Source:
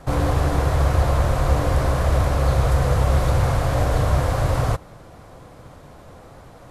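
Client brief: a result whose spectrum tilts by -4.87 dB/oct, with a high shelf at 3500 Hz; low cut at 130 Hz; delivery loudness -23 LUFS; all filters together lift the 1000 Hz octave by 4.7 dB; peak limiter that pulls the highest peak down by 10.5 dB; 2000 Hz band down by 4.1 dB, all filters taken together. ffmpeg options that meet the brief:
-af "highpass=130,equalizer=f=1k:t=o:g=8.5,equalizer=f=2k:t=o:g=-7.5,highshelf=f=3.5k:g=-8.5,volume=5.5dB,alimiter=limit=-14.5dB:level=0:latency=1"

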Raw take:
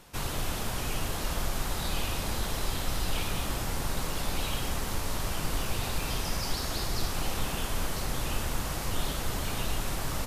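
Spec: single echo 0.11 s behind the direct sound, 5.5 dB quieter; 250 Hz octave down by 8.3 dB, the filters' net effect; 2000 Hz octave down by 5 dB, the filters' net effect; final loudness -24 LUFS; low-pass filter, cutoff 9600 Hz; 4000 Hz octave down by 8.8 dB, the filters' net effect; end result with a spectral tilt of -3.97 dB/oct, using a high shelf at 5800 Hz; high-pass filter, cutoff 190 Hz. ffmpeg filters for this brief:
-af "highpass=190,lowpass=9.6k,equalizer=f=250:t=o:g=-9,equalizer=f=2k:t=o:g=-3.5,equalizer=f=4k:t=o:g=-8,highshelf=f=5.8k:g=-6,aecho=1:1:110:0.531,volume=14.5dB"

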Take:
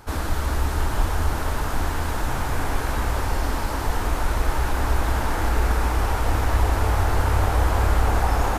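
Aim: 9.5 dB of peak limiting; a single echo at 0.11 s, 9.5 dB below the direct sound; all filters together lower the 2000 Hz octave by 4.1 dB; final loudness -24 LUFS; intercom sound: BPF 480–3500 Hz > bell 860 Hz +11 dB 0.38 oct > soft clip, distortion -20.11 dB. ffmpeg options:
-af "equalizer=f=2k:t=o:g=-6,alimiter=limit=-17.5dB:level=0:latency=1,highpass=480,lowpass=3.5k,equalizer=f=860:t=o:w=0.38:g=11,aecho=1:1:110:0.335,asoftclip=threshold=-19.5dB,volume=5.5dB"

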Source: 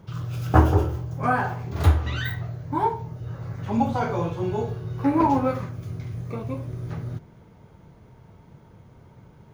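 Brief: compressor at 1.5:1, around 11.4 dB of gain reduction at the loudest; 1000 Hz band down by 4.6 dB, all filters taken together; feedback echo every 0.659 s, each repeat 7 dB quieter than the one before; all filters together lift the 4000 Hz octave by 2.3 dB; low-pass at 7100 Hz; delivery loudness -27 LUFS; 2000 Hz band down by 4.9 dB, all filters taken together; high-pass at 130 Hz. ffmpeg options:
-af "highpass=130,lowpass=7.1k,equalizer=f=1k:t=o:g=-5,equalizer=f=2k:t=o:g=-5.5,equalizer=f=4k:t=o:g=5.5,acompressor=threshold=-48dB:ratio=1.5,aecho=1:1:659|1318|1977|2636|3295:0.447|0.201|0.0905|0.0407|0.0183,volume=10dB"

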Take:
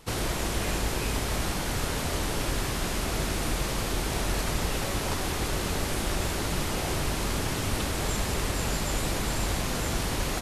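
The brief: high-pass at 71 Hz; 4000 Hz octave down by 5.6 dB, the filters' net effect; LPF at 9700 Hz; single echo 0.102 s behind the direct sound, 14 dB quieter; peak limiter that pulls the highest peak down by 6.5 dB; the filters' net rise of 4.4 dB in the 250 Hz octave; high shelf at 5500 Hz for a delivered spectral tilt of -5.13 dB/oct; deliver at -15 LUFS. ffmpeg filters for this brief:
-af "highpass=71,lowpass=9.7k,equalizer=f=250:t=o:g=6,equalizer=f=4k:t=o:g=-4.5,highshelf=f=5.5k:g=-6.5,alimiter=limit=-22.5dB:level=0:latency=1,aecho=1:1:102:0.2,volume=17dB"

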